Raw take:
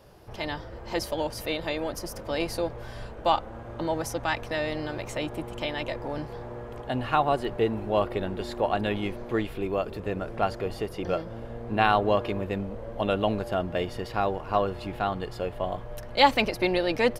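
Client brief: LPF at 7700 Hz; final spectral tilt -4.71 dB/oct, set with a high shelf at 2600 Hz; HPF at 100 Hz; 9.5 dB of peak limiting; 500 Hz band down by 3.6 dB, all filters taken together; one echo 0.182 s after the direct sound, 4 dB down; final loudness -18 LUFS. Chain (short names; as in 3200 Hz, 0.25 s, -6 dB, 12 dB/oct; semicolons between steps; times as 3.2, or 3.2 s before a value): HPF 100 Hz; LPF 7700 Hz; bell 500 Hz -4 dB; high shelf 2600 Hz -9 dB; limiter -17.5 dBFS; echo 0.182 s -4 dB; gain +14 dB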